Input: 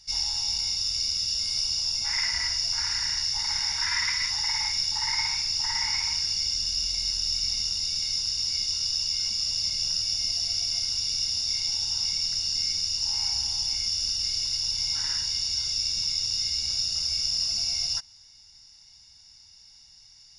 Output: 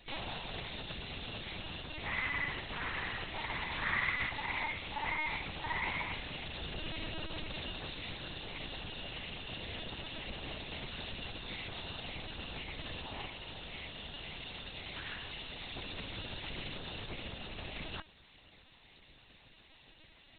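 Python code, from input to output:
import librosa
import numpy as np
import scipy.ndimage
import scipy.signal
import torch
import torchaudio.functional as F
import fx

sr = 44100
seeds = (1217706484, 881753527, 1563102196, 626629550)

y = fx.highpass(x, sr, hz=1300.0, slope=12, at=(13.27, 15.71))
y = fx.tube_stage(y, sr, drive_db=32.0, bias=0.25)
y = fx.air_absorb(y, sr, metres=140.0)
y = fx.lpc_vocoder(y, sr, seeds[0], excitation='pitch_kept', order=8)
y = F.gain(torch.from_numpy(y), 7.0).numpy()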